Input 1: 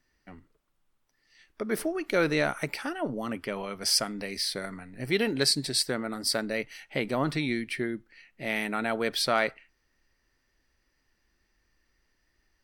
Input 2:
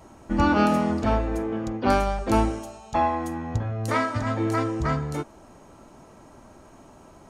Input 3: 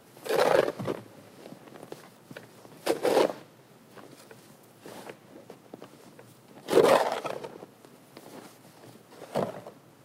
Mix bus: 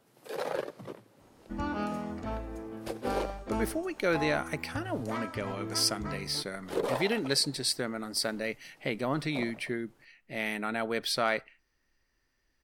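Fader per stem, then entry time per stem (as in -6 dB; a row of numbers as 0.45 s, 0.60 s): -3.0 dB, -13.5 dB, -11.0 dB; 1.90 s, 1.20 s, 0.00 s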